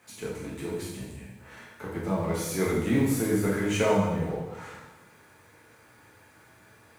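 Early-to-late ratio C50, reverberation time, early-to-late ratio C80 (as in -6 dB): 1.0 dB, 1.0 s, 4.0 dB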